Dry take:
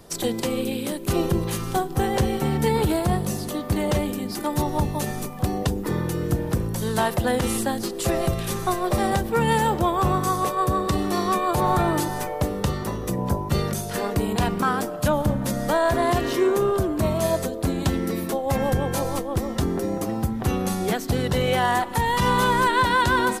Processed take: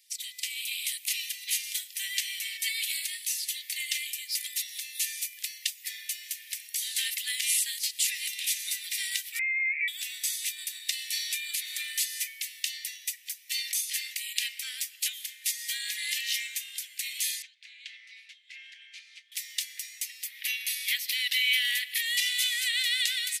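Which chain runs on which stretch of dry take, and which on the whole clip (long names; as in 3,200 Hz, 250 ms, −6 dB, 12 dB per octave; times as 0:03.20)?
0:09.39–0:09.88: high-pass filter 700 Hz 24 dB per octave + downward compressor 10 to 1, threshold −27 dBFS + voice inversion scrambler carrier 3,000 Hz
0:17.42–0:19.32: head-to-tape spacing loss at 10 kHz 36 dB + notch filter 1,900 Hz, Q 13 + highs frequency-modulated by the lows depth 0.19 ms
0:20.25–0:22.01: ceiling on every frequency bin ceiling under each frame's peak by 13 dB + parametric band 7,300 Hz −12 dB 1 octave
whole clip: Butterworth high-pass 2,000 Hz 72 dB per octave; automatic gain control gain up to 10.5 dB; level −6 dB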